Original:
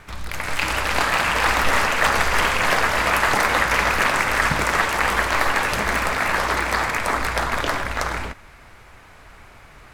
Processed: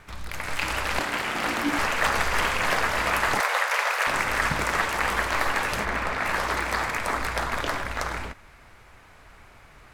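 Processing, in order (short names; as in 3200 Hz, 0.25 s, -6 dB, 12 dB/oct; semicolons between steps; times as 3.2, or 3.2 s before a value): 0.99–1.79 ring modulator 290 Hz; 3.4–4.07 steep high-pass 470 Hz 36 dB/oct; 5.84–6.24 high shelf 4500 Hz -> 7300 Hz -12 dB; gain -5 dB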